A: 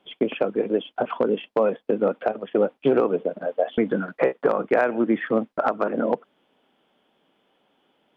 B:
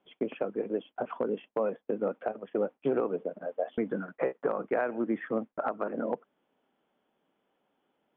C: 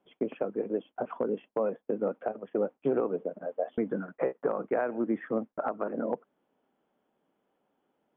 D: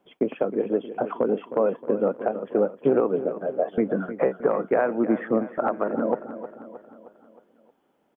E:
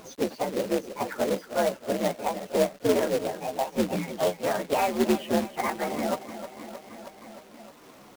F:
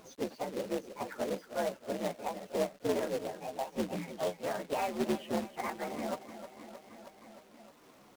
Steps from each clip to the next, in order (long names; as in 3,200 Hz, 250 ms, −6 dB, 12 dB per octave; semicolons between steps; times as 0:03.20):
low-pass filter 2,300 Hz 12 dB per octave; level −9 dB
high-shelf EQ 2,200 Hz −10 dB; level +1 dB
repeating echo 312 ms, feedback 52%, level −12.5 dB; level +7 dB
partials spread apart or drawn together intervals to 125%; upward compression, threshold −33 dBFS; log-companded quantiser 4 bits
highs frequency-modulated by the lows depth 0.24 ms; level −8.5 dB